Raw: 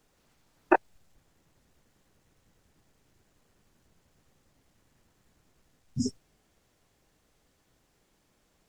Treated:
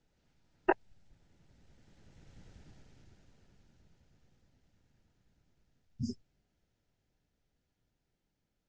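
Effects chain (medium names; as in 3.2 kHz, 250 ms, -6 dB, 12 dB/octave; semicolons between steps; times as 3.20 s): Doppler pass-by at 2.51 s, 15 m/s, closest 6.4 m; low-pass 6.6 kHz 24 dB/octave; tone controls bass +7 dB, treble 0 dB; band-stop 1.1 kHz, Q 5.6; trim +6.5 dB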